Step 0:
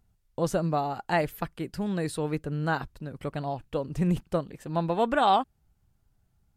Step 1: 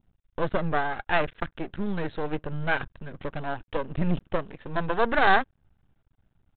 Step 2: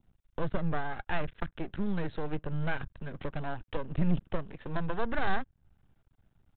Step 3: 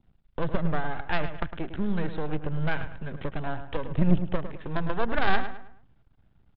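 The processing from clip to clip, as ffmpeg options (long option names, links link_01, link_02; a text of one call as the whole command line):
ffmpeg -i in.wav -af "aresample=8000,aeval=exprs='max(val(0),0)':channel_layout=same,aresample=44100,adynamicequalizer=threshold=0.00282:dfrequency=1600:dqfactor=5.3:tfrequency=1600:tqfactor=5.3:attack=5:release=100:ratio=0.375:range=3:mode=boostabove:tftype=bell,volume=5.5dB" out.wav
ffmpeg -i in.wav -filter_complex "[0:a]acrossover=split=200[link_01][link_02];[link_02]acompressor=threshold=-40dB:ratio=2[link_03];[link_01][link_03]amix=inputs=2:normalize=0" out.wav
ffmpeg -i in.wav -filter_complex "[0:a]asplit=2[link_01][link_02];[link_02]acrusher=bits=2:mix=0:aa=0.5,volume=-5.5dB[link_03];[link_01][link_03]amix=inputs=2:normalize=0,asplit=2[link_04][link_05];[link_05]adelay=106,lowpass=frequency=3200:poles=1,volume=-10dB,asplit=2[link_06][link_07];[link_07]adelay=106,lowpass=frequency=3200:poles=1,volume=0.38,asplit=2[link_08][link_09];[link_09]adelay=106,lowpass=frequency=3200:poles=1,volume=0.38,asplit=2[link_10][link_11];[link_11]adelay=106,lowpass=frequency=3200:poles=1,volume=0.38[link_12];[link_04][link_06][link_08][link_10][link_12]amix=inputs=5:normalize=0,aresample=11025,aresample=44100,volume=3.5dB" out.wav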